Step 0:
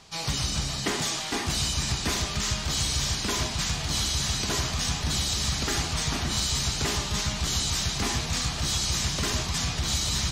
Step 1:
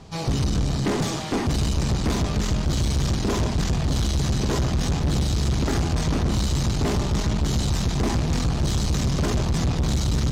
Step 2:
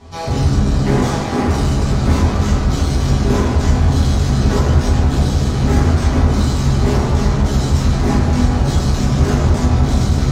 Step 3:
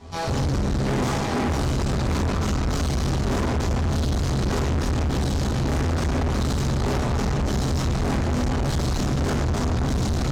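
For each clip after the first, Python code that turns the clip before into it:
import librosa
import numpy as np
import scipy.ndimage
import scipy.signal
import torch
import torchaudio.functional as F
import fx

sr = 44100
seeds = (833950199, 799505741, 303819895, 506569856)

y1 = fx.tilt_shelf(x, sr, db=9.0, hz=870.0)
y1 = fx.tube_stage(y1, sr, drive_db=26.0, bias=0.5)
y1 = F.gain(torch.from_numpy(y1), 7.5).numpy()
y2 = fx.rev_fdn(y1, sr, rt60_s=1.9, lf_ratio=0.85, hf_ratio=0.3, size_ms=72.0, drr_db=-9.5)
y2 = F.gain(torch.from_numpy(y2), -2.5).numpy()
y3 = fx.tube_stage(y2, sr, drive_db=22.0, bias=0.75)
y3 = F.gain(torch.from_numpy(y3), 1.5).numpy()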